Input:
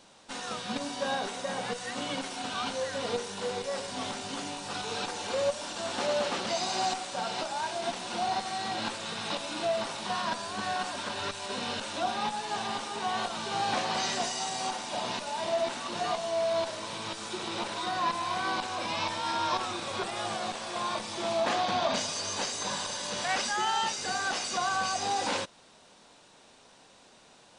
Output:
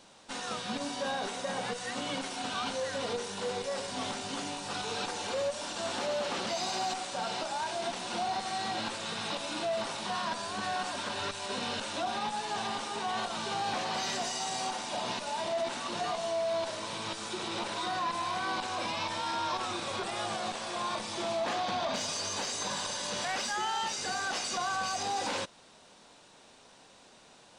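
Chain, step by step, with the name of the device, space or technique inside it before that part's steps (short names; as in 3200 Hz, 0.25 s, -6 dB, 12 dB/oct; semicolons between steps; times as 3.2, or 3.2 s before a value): soft clipper into limiter (soft clip -20.5 dBFS, distortion -24 dB; limiter -25.5 dBFS, peak gain reduction 4 dB)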